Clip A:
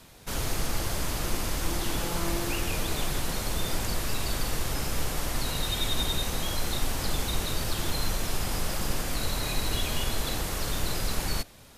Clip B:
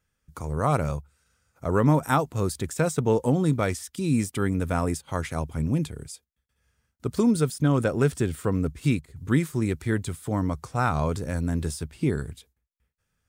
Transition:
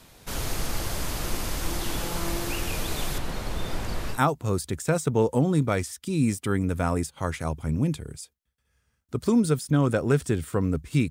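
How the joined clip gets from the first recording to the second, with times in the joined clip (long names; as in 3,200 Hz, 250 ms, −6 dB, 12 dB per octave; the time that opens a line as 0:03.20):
clip A
0:03.18–0:04.20: high-shelf EQ 4,500 Hz −12 dB
0:04.15: continue with clip B from 0:02.06, crossfade 0.10 s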